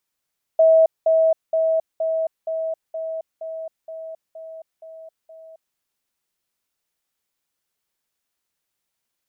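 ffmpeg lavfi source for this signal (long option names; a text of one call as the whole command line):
ffmpeg -f lavfi -i "aevalsrc='pow(10,(-10-3*floor(t/0.47))/20)*sin(2*PI*646*t)*clip(min(mod(t,0.47),0.27-mod(t,0.47))/0.005,0,1)':duration=5.17:sample_rate=44100" out.wav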